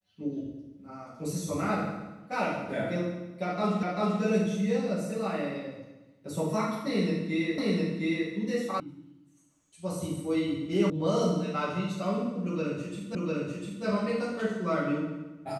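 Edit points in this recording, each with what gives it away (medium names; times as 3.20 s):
3.83 s: repeat of the last 0.39 s
7.58 s: repeat of the last 0.71 s
8.80 s: sound stops dead
10.90 s: sound stops dead
13.15 s: repeat of the last 0.7 s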